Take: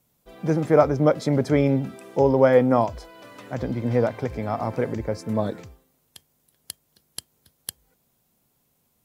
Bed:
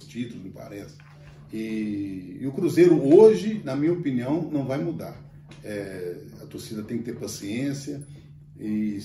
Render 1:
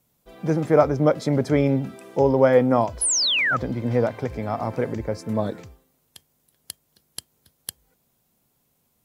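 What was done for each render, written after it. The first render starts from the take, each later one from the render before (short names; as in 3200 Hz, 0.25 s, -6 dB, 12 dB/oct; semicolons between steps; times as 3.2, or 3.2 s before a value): 3.01–3.57 painted sound fall 1200–11000 Hz -21 dBFS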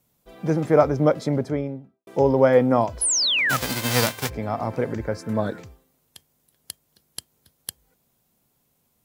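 1.06–2.07 studio fade out; 3.49–4.28 spectral whitening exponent 0.3; 4.9–5.59 bell 1500 Hz +8.5 dB 0.42 oct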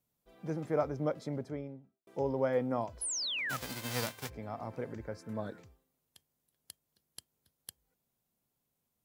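gain -14.5 dB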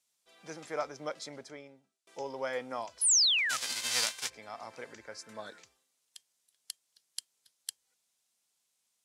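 weighting filter ITU-R 468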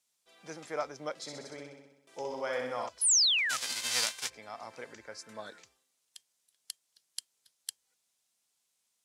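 1.13–2.89 flutter echo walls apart 10.9 m, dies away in 0.91 s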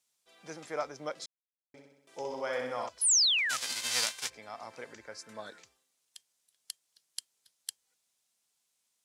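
1.26–1.74 mute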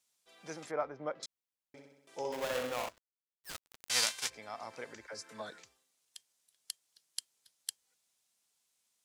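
0.71–1.23 LPF 1700 Hz; 2.32–3.9 switching dead time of 0.24 ms; 5.07–5.5 dispersion lows, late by 55 ms, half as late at 530 Hz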